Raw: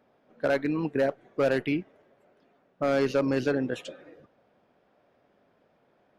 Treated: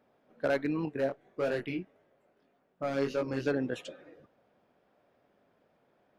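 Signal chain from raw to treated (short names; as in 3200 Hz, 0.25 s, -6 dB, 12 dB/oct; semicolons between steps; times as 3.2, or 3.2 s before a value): 0.85–3.46 chorus 1.7 Hz, delay 19.5 ms, depth 3.3 ms; gain -3.5 dB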